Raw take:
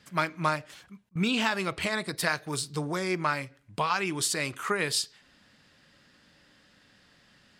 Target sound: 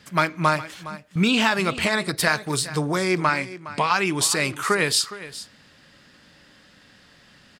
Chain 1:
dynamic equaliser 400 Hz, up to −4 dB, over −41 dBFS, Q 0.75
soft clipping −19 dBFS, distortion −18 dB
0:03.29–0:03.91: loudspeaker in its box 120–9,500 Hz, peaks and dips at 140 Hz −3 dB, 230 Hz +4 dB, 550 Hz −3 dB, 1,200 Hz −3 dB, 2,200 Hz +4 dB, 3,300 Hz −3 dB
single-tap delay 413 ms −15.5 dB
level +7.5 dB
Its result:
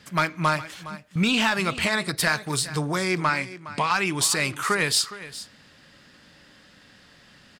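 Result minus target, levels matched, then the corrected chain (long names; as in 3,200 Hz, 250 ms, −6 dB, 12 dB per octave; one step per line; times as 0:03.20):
soft clipping: distortion +10 dB; 500 Hz band −2.5 dB
soft clipping −11 dBFS, distortion −28 dB
0:03.29–0:03.91: loudspeaker in its box 120–9,500 Hz, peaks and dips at 140 Hz −3 dB, 230 Hz +4 dB, 550 Hz −3 dB, 1,200 Hz −3 dB, 2,200 Hz +4 dB, 3,300 Hz −3 dB
single-tap delay 413 ms −15.5 dB
level +7.5 dB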